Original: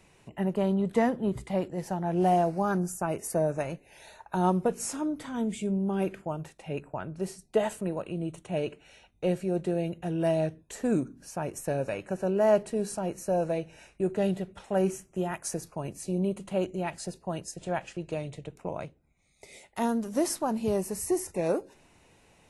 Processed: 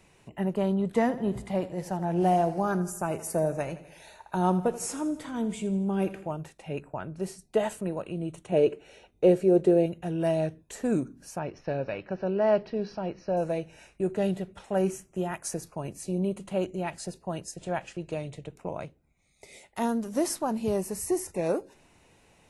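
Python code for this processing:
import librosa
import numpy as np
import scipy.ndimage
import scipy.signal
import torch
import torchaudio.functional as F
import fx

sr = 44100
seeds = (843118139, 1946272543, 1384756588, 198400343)

y = fx.echo_feedback(x, sr, ms=82, feedback_pct=54, wet_db=-15, at=(1.01, 6.34))
y = fx.peak_eq(y, sr, hz=420.0, db=11.5, octaves=1.1, at=(8.52, 9.86))
y = fx.ellip_lowpass(y, sr, hz=5200.0, order=4, stop_db=40, at=(11.39, 13.37))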